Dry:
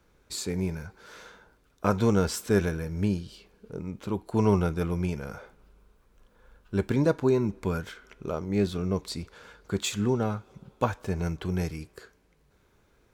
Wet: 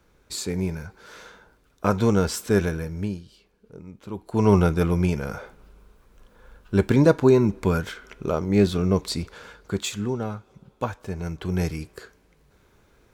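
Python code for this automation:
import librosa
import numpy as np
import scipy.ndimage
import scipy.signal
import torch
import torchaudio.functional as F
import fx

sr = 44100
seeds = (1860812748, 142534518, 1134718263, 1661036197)

y = fx.gain(x, sr, db=fx.line((2.83, 3.0), (3.25, -6.0), (4.02, -6.0), (4.58, 7.0), (9.35, 7.0), (10.07, -1.5), (11.23, -1.5), (11.66, 5.5)))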